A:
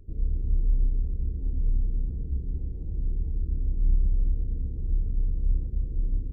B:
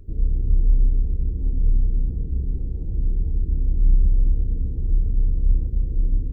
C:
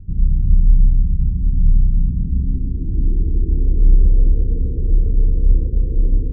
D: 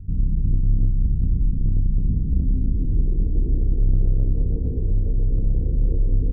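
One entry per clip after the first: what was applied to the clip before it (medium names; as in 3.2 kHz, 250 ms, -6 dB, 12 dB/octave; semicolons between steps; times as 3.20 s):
de-hum 71.24 Hz, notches 36; trim +6.5 dB
low-pass sweep 170 Hz -> 480 Hz, 1.92–3.95 s; trim +5 dB
saturation -13.5 dBFS, distortion -11 dB; doubling 20 ms -5.5 dB; delay 914 ms -12 dB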